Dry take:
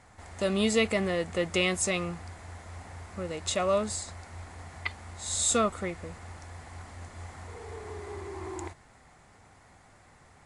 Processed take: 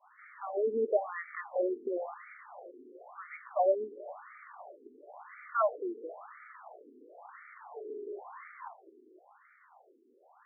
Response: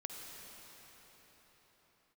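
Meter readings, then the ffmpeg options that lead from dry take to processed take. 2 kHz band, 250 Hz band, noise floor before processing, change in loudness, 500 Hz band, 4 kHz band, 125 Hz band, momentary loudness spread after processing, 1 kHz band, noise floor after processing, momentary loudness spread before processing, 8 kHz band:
-11.0 dB, -11.5 dB, -58 dBFS, -4.5 dB, -2.0 dB, under -40 dB, under -30 dB, 21 LU, -1.0 dB, -64 dBFS, 20 LU, under -40 dB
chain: -filter_complex "[0:a]adynamicequalizer=threshold=0.00501:dfrequency=760:dqfactor=2.8:tfrequency=760:tqfactor=2.8:attack=5:release=100:ratio=0.375:range=2.5:mode=boostabove:tftype=bell,asplit=2[s0][s1];[1:a]atrim=start_sample=2205[s2];[s1][s2]afir=irnorm=-1:irlink=0,volume=0.299[s3];[s0][s3]amix=inputs=2:normalize=0,afftfilt=real='re*between(b*sr/1024,320*pow(1700/320,0.5+0.5*sin(2*PI*0.97*pts/sr))/1.41,320*pow(1700/320,0.5+0.5*sin(2*PI*0.97*pts/sr))*1.41)':imag='im*between(b*sr/1024,320*pow(1700/320,0.5+0.5*sin(2*PI*0.97*pts/sr))/1.41,320*pow(1700/320,0.5+0.5*sin(2*PI*0.97*pts/sr))*1.41)':win_size=1024:overlap=0.75"

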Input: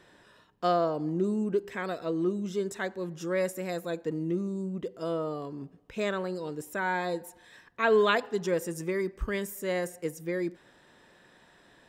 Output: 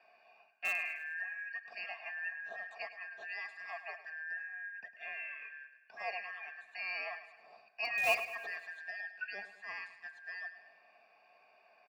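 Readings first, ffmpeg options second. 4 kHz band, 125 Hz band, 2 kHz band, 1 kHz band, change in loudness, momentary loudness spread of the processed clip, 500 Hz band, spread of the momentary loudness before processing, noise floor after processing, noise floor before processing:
-6.5 dB, under -35 dB, -0.5 dB, -12.0 dB, -8.5 dB, 13 LU, -19.5 dB, 10 LU, -67 dBFS, -60 dBFS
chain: -filter_complex "[0:a]afftfilt=real='real(if(lt(b,272),68*(eq(floor(b/68),0)*2+eq(floor(b/68),1)*0+eq(floor(b/68),2)*3+eq(floor(b/68),3)*1)+mod(b,68),b),0)':imag='imag(if(lt(b,272),68*(eq(floor(b/68),0)*2+eq(floor(b/68),1)*0+eq(floor(b/68),2)*3+eq(floor(b/68),3)*1)+mod(b,68),b),0)':win_size=2048:overlap=0.75,lowpass=8300,aemphasis=mode=reproduction:type=75kf,bandreject=f=50:t=h:w=6,bandreject=f=100:t=h:w=6,bandreject=f=150:t=h:w=6,aecho=1:1:4.4:0.47,acrossover=split=160[s0][s1];[s0]dynaudnorm=f=350:g=11:m=2[s2];[s2][s1]amix=inputs=2:normalize=0,afreqshift=-23,asplit=3[s3][s4][s5];[s3]bandpass=f=730:t=q:w=8,volume=1[s6];[s4]bandpass=f=1090:t=q:w=8,volume=0.501[s7];[s5]bandpass=f=2440:t=q:w=8,volume=0.355[s8];[s6][s7][s8]amix=inputs=3:normalize=0,asplit=2[s9][s10];[s10]aeval=exprs='(mod(70.8*val(0)+1,2)-1)/70.8':c=same,volume=0.282[s11];[s9][s11]amix=inputs=2:normalize=0,aecho=1:1:104|208|312|416|520|624:0.211|0.116|0.0639|0.0352|0.0193|0.0106,volume=2.66"

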